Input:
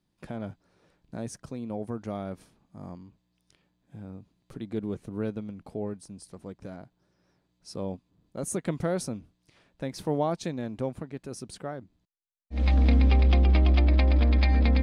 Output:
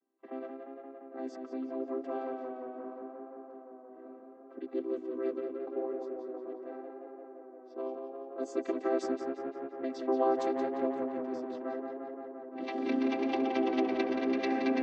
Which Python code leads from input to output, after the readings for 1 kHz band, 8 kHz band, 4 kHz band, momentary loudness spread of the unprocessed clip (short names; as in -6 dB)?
+1.5 dB, under -15 dB, -8.0 dB, 23 LU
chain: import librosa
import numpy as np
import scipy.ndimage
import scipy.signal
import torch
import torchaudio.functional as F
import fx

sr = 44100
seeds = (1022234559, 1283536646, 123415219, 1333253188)

y = fx.chord_vocoder(x, sr, chord='major triad', root=60)
y = fx.highpass(y, sr, hz=520.0, slope=6)
y = fx.env_lowpass(y, sr, base_hz=1400.0, full_db=-33.5)
y = fx.echo_tape(y, sr, ms=175, feedback_pct=90, wet_db=-4, lp_hz=2800.0, drive_db=25.0, wow_cents=29)
y = F.gain(torch.from_numpy(y), 3.0).numpy()